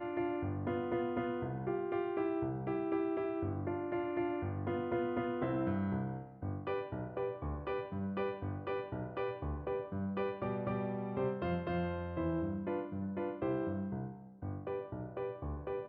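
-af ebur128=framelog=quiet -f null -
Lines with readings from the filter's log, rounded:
Integrated loudness:
  I:         -37.9 LUFS
  Threshold: -47.9 LUFS
Loudness range:
  LRA:         3.0 LU
  Threshold: -57.8 LUFS
  LRA low:   -39.6 LUFS
  LRA high:  -36.6 LUFS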